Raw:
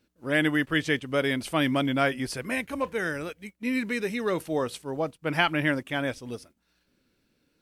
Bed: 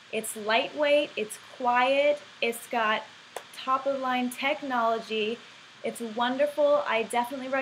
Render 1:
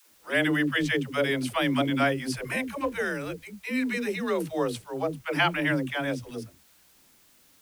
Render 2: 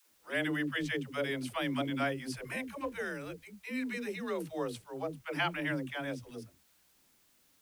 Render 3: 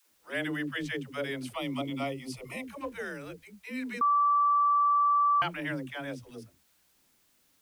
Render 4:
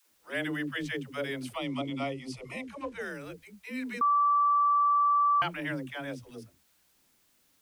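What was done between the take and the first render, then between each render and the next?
requantised 10-bit, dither triangular; dispersion lows, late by 0.122 s, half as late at 320 Hz
gain -8.5 dB
1.55–2.65 Butterworth band-stop 1600 Hz, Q 2.6; 4.01–5.42 bleep 1160 Hz -21 dBFS
1.58–3.01 LPF 7900 Hz

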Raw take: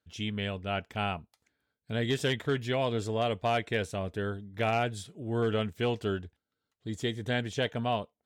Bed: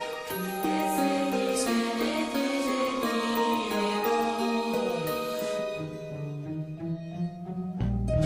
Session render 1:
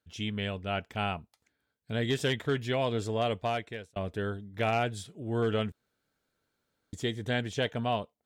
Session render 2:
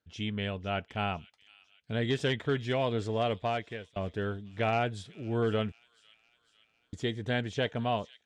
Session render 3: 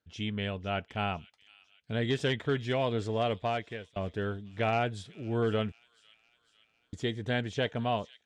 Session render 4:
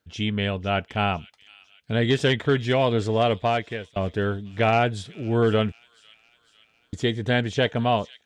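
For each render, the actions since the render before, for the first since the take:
3.34–3.96 fade out linear; 5.72–6.93 room tone
air absorption 73 m; thin delay 0.502 s, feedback 56%, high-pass 3300 Hz, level -14.5 dB
nothing audible
gain +8.5 dB

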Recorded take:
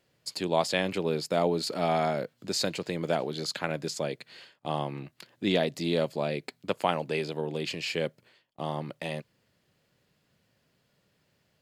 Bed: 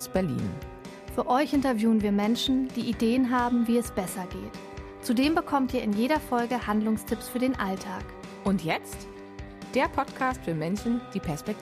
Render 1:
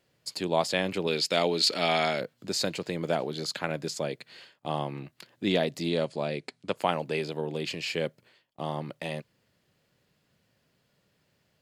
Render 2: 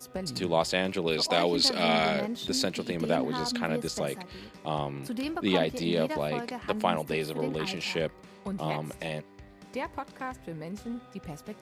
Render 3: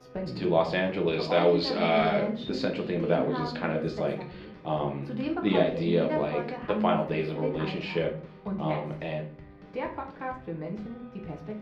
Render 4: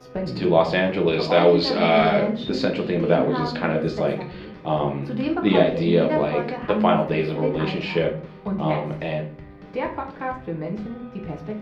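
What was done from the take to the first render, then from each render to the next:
1.07–2.21 weighting filter D; 5.89–6.76 elliptic low-pass 10000 Hz
add bed -9.5 dB
air absorption 300 m; shoebox room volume 35 m³, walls mixed, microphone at 0.52 m
gain +6.5 dB

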